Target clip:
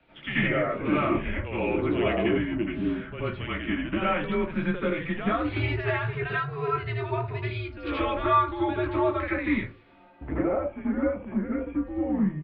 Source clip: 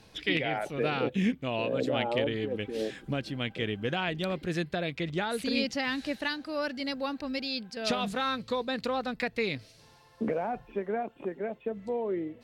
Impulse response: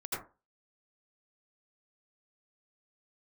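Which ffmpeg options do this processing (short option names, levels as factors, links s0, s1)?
-filter_complex "[0:a]lowshelf=f=120:g=-11.5,acrossover=split=480|2000[s0][s1][s2];[s0]volume=39.8,asoftclip=hard,volume=0.0251[s3];[s2]asplit=2[s4][s5];[s5]adelay=18,volume=0.631[s6];[s4][s6]amix=inputs=2:normalize=0[s7];[s3][s1][s7]amix=inputs=3:normalize=0[s8];[1:a]atrim=start_sample=2205[s9];[s8][s9]afir=irnorm=-1:irlink=0,highpass=f=180:t=q:w=0.5412,highpass=f=180:t=q:w=1.307,lowpass=f=3100:t=q:w=0.5176,lowpass=f=3100:t=q:w=0.7071,lowpass=f=3100:t=q:w=1.932,afreqshift=-160,volume=1.26"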